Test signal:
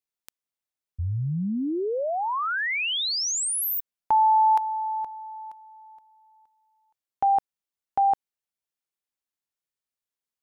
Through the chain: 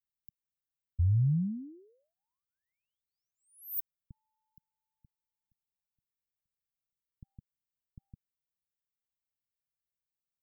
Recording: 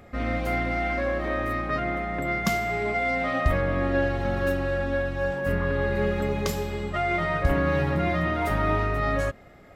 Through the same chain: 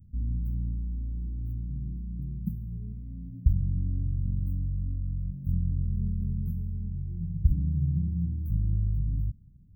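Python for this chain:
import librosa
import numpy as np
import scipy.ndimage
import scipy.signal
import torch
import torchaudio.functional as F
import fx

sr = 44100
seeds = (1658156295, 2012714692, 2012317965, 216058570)

y = scipy.signal.sosfilt(scipy.signal.cheby2(4, 70, [680.0, 7000.0], 'bandstop', fs=sr, output='sos'), x)
y = y * 10.0 ** (2.0 / 20.0)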